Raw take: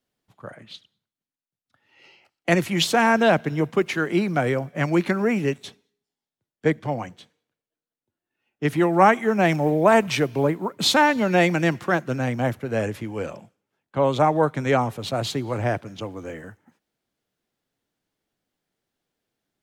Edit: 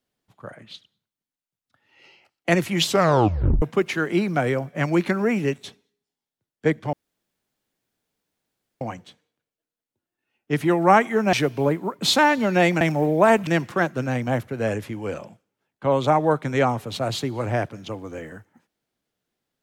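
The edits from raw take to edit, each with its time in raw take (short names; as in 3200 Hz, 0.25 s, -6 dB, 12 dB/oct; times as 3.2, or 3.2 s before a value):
2.85 tape stop 0.77 s
6.93 insert room tone 1.88 s
9.45–10.11 move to 11.59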